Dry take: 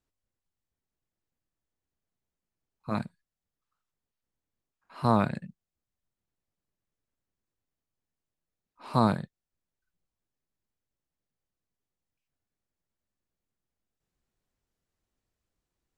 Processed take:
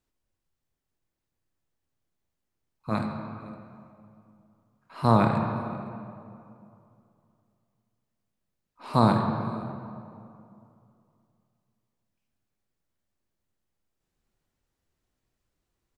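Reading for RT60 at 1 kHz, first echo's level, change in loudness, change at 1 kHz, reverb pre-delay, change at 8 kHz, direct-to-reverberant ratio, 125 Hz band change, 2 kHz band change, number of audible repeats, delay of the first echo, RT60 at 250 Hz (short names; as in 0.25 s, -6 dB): 2.5 s, -22.5 dB, +1.5 dB, +4.5 dB, 23 ms, n/a, 3.0 dB, +5.5 dB, +4.0 dB, 1, 0.51 s, 2.9 s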